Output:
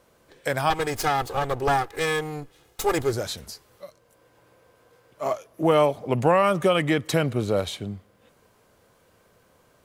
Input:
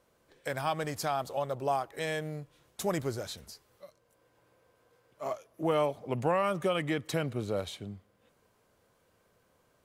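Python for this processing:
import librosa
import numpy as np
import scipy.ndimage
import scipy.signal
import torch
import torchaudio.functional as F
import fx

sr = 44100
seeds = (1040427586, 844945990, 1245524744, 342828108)

y = fx.lower_of_two(x, sr, delay_ms=2.4, at=(0.7, 3.13))
y = F.gain(torch.from_numpy(y), 9.0).numpy()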